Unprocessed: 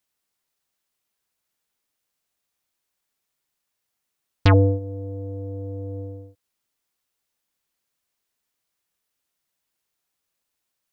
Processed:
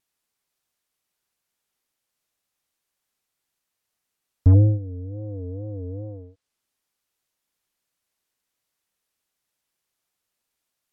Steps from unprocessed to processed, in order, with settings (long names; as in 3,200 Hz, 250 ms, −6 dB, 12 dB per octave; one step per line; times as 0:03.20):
tape wow and flutter 140 cents
dynamic equaliser 140 Hz, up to +4 dB, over −26 dBFS, Q 1.1
treble cut that deepens with the level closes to 300 Hz, closed at −27 dBFS